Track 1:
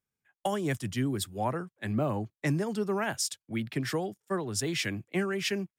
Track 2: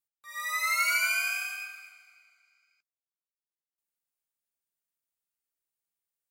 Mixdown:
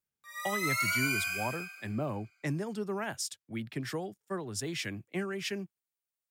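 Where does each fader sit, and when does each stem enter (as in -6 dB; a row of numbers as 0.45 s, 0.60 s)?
-5.0 dB, -4.0 dB; 0.00 s, 0.00 s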